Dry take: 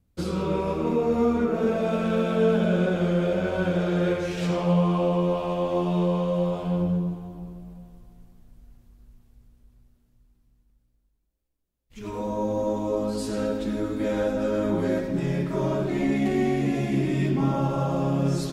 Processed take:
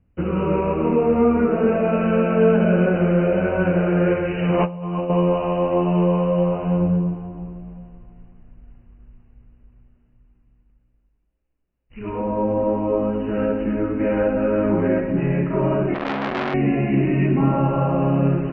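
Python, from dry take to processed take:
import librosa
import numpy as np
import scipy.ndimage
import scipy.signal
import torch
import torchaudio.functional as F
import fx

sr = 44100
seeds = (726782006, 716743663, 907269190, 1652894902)

y = fx.over_compress(x, sr, threshold_db=-27.0, ratio=-0.5, at=(4.54, 5.1))
y = fx.brickwall_lowpass(y, sr, high_hz=3000.0)
y = fx.transformer_sat(y, sr, knee_hz=1700.0, at=(15.94, 16.54))
y = y * 10.0 ** (5.5 / 20.0)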